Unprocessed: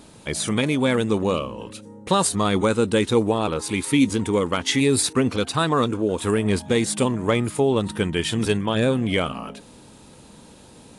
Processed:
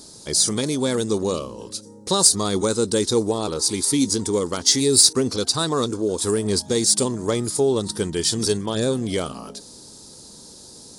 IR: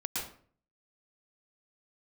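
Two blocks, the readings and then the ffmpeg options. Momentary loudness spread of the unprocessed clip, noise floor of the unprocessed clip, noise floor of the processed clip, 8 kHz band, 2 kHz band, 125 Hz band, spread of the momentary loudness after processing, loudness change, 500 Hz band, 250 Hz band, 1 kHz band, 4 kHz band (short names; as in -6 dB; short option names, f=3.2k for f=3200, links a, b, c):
7 LU, -47 dBFS, -44 dBFS, +9.5 dB, -8.0 dB, -3.5 dB, 11 LU, +1.5 dB, 0.0 dB, -2.0 dB, -4.5 dB, +5.5 dB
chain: -filter_complex "[0:a]highshelf=f=3.6k:t=q:w=3:g=11,asplit=2[a][b];[b]asoftclip=type=tanh:threshold=-11dB,volume=-10.5dB[c];[a][c]amix=inputs=2:normalize=0,equalizer=f=390:t=o:w=0.53:g=5.5,volume=-5.5dB"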